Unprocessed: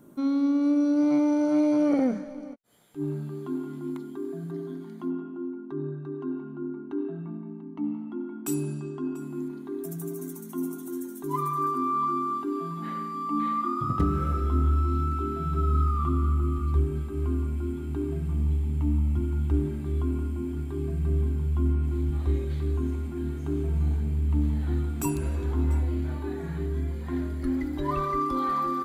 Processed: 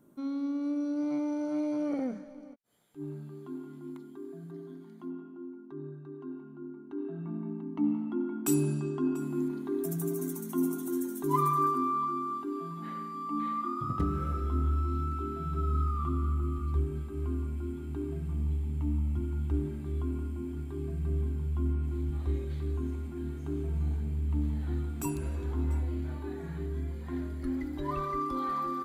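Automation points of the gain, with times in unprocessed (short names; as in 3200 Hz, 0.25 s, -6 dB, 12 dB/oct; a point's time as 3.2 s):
6.84 s -9 dB
7.45 s +2 dB
11.49 s +2 dB
12.1 s -5.5 dB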